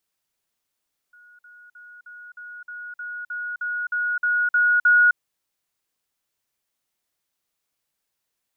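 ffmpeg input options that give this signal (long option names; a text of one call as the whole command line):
ffmpeg -f lavfi -i "aevalsrc='pow(10,(-48+3*floor(t/0.31))/20)*sin(2*PI*1450*t)*clip(min(mod(t,0.31),0.26-mod(t,0.31))/0.005,0,1)':duration=4.03:sample_rate=44100" out.wav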